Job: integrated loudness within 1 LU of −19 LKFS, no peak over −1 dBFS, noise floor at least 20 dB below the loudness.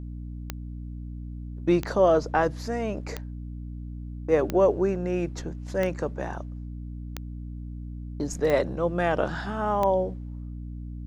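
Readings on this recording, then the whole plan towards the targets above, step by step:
number of clicks 8; mains hum 60 Hz; hum harmonics up to 300 Hz; level of the hum −34 dBFS; integrated loudness −26.0 LKFS; sample peak −9.0 dBFS; target loudness −19.0 LKFS
→ click removal
hum removal 60 Hz, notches 5
level +7 dB

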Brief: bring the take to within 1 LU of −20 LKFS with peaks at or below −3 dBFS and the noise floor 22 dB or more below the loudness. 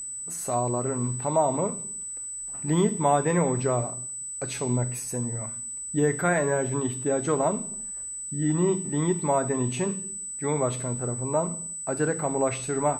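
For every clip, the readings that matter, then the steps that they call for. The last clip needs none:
interfering tone 8,000 Hz; level of the tone −33 dBFS; integrated loudness −27.0 LKFS; sample peak −10.5 dBFS; target loudness −20.0 LKFS
→ notch filter 8,000 Hz, Q 30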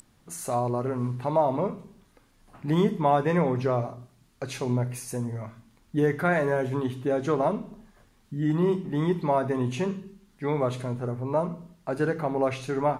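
interfering tone none found; integrated loudness −27.0 LKFS; sample peak −11.0 dBFS; target loudness −20.0 LKFS
→ level +7 dB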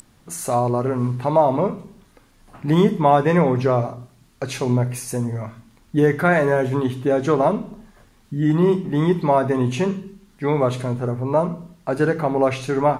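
integrated loudness −20.0 LKFS; sample peak −4.0 dBFS; background noise floor −55 dBFS

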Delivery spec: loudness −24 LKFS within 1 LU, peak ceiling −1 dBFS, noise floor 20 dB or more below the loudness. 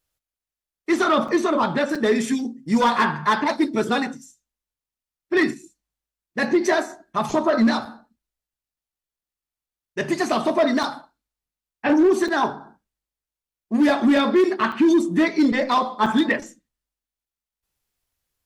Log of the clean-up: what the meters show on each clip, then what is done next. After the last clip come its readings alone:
share of clipped samples 0.6%; peaks flattened at −11.5 dBFS; number of dropouts 7; longest dropout 4.8 ms; integrated loudness −21.0 LKFS; sample peak −11.5 dBFS; target loudness −24.0 LKFS
→ clipped peaks rebuilt −11.5 dBFS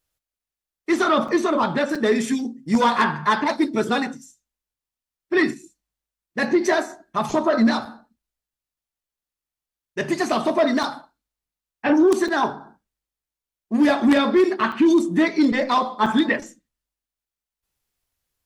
share of clipped samples 0.0%; number of dropouts 7; longest dropout 4.8 ms
→ repair the gap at 0:01.28/0:01.95/0:07.85/0:10.83/0:12.28/0:14.72/0:16.06, 4.8 ms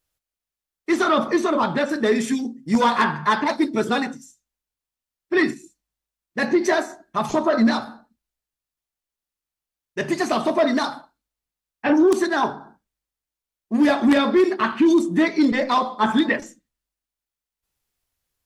number of dropouts 0; integrated loudness −20.5 LKFS; sample peak −2.5 dBFS; target loudness −24.0 LKFS
→ level −3.5 dB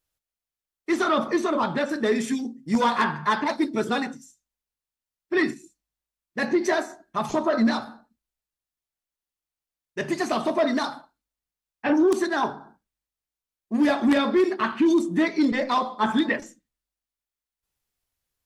integrated loudness −24.0 LKFS; sample peak −6.0 dBFS; background noise floor −91 dBFS

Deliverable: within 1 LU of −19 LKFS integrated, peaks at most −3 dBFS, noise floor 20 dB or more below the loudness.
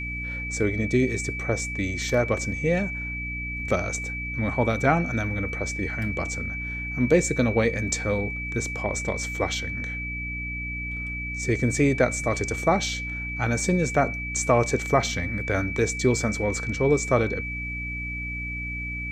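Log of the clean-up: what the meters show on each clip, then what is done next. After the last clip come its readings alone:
mains hum 60 Hz; hum harmonics up to 300 Hz; level of the hum −32 dBFS; interfering tone 2,300 Hz; level of the tone −31 dBFS; integrated loudness −25.5 LKFS; sample peak −6.0 dBFS; target loudness −19.0 LKFS
→ mains-hum notches 60/120/180/240/300 Hz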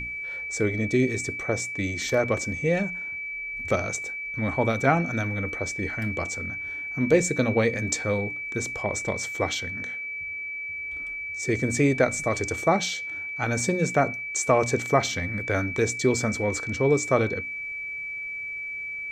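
mains hum none found; interfering tone 2,300 Hz; level of the tone −31 dBFS
→ notch filter 2,300 Hz, Q 30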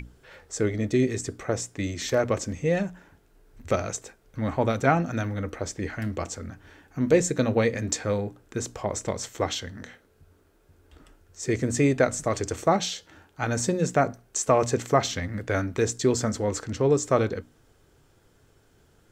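interfering tone none found; integrated loudness −26.5 LKFS; sample peak −6.0 dBFS; target loudness −19.0 LKFS
→ level +7.5 dB
brickwall limiter −3 dBFS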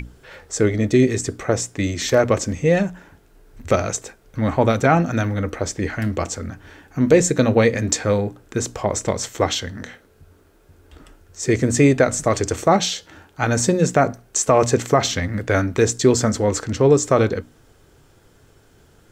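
integrated loudness −19.5 LKFS; sample peak −3.0 dBFS; background noise floor −54 dBFS

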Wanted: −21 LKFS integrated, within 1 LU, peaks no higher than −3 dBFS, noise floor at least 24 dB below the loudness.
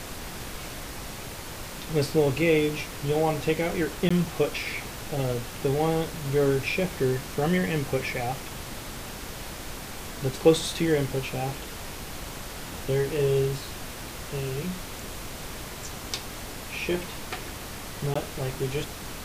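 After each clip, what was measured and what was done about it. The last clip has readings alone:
number of dropouts 2; longest dropout 15 ms; background noise floor −39 dBFS; target noise floor −53 dBFS; integrated loudness −29.0 LKFS; sample peak −6.0 dBFS; target loudness −21.0 LKFS
→ repair the gap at 0:04.09/0:18.14, 15 ms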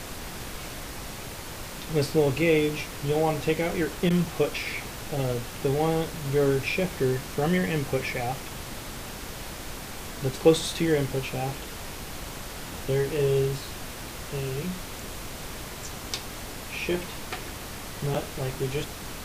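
number of dropouts 0; background noise floor −39 dBFS; target noise floor −53 dBFS
→ noise reduction from a noise print 14 dB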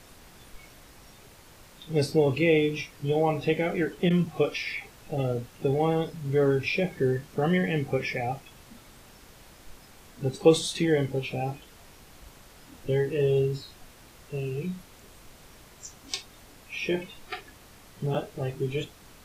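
background noise floor −53 dBFS; integrated loudness −27.5 LKFS; sample peak −6.5 dBFS; target loudness −21.0 LKFS
→ level +6.5 dB
brickwall limiter −3 dBFS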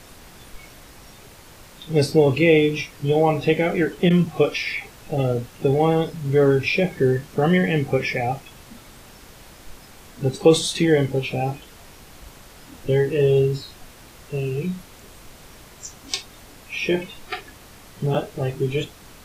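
integrated loudness −21.5 LKFS; sample peak −3.0 dBFS; background noise floor −46 dBFS

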